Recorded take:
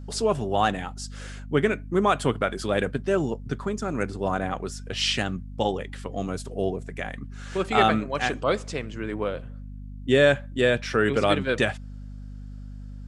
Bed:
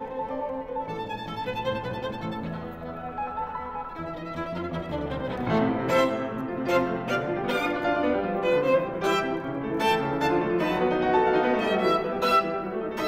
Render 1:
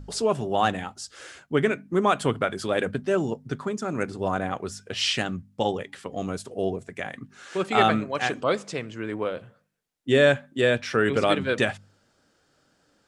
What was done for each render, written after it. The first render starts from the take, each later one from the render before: de-hum 50 Hz, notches 5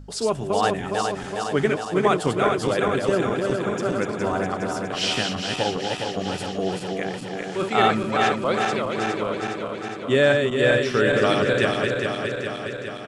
backward echo that repeats 206 ms, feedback 81%, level -4 dB; delay 765 ms -22.5 dB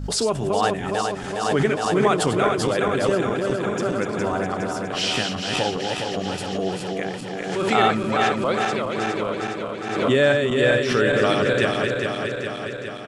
swell ahead of each attack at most 46 dB/s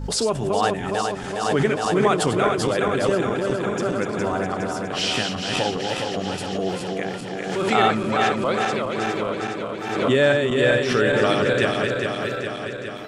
add bed -15 dB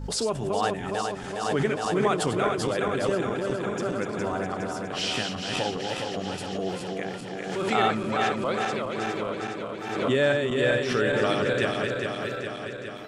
trim -5 dB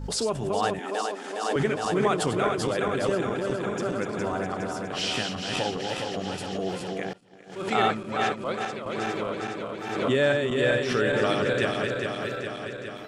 0.79–1.56 s: steep high-pass 240 Hz; 7.13–8.86 s: expander -24 dBFS

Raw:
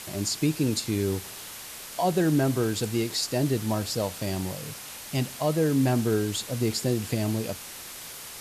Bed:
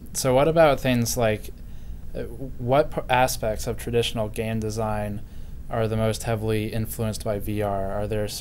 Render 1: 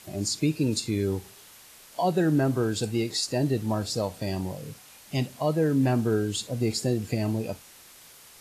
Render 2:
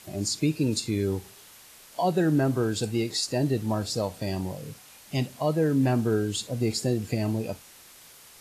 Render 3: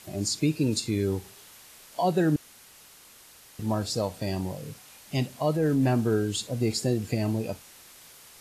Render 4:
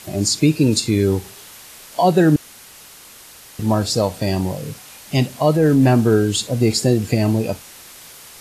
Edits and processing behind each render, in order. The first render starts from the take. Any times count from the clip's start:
noise print and reduce 10 dB
no audible change
2.36–3.59 s: room tone; 5.54–5.94 s: transient shaper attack -6 dB, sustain +3 dB
trim +10 dB

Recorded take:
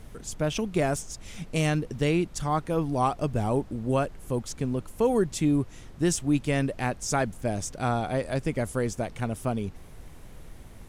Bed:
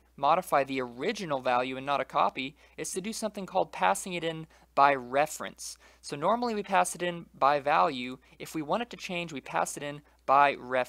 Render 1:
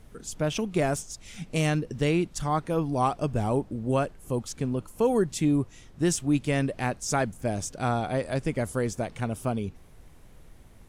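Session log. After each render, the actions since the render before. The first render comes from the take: noise print and reduce 6 dB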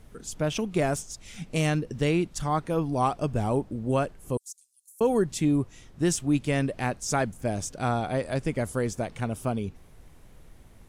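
4.37–5.01 s: inverse Chebyshev high-pass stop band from 1.2 kHz, stop band 80 dB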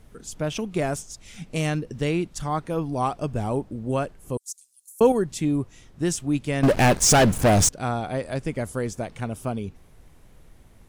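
4.48–5.12 s: gain +6.5 dB; 6.63–7.69 s: waveshaping leveller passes 5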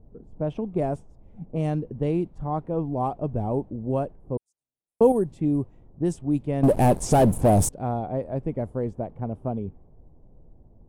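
high-order bell 2.9 kHz -14.5 dB 2.8 oct; level-controlled noise filter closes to 670 Hz, open at -16.5 dBFS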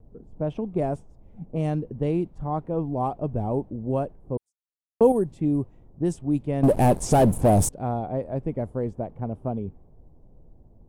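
gate with hold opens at -49 dBFS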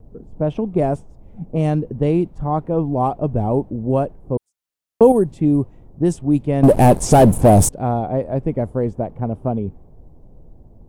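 trim +7.5 dB; peak limiter -1 dBFS, peak gain reduction 2 dB

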